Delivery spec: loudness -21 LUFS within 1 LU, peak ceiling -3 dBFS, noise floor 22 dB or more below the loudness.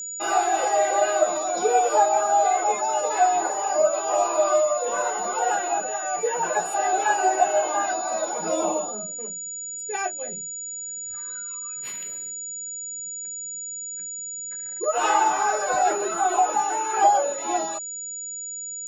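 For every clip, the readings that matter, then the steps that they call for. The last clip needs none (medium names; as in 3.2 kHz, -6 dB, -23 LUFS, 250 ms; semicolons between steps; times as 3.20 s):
steady tone 6.9 kHz; tone level -31 dBFS; loudness -24.0 LUFS; peak level -6.5 dBFS; loudness target -21.0 LUFS
-> band-stop 6.9 kHz, Q 30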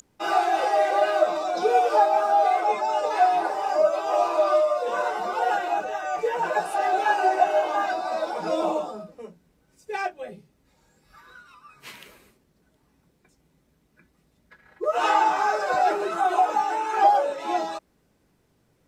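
steady tone not found; loudness -23.0 LUFS; peak level -6.5 dBFS; loudness target -21.0 LUFS
-> trim +2 dB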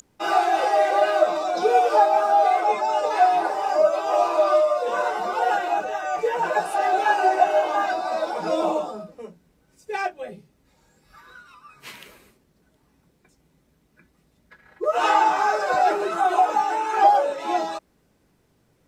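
loudness -21.0 LUFS; peak level -4.5 dBFS; noise floor -65 dBFS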